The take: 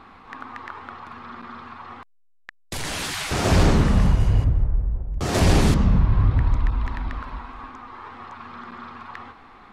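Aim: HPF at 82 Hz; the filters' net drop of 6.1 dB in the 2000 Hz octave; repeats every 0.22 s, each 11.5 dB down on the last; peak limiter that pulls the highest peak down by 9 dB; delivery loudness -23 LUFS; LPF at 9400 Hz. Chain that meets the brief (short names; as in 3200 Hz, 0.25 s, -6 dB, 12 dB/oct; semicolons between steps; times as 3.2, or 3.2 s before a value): HPF 82 Hz; LPF 9400 Hz; bell 2000 Hz -8 dB; limiter -16 dBFS; feedback echo 0.22 s, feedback 27%, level -11.5 dB; gain +4.5 dB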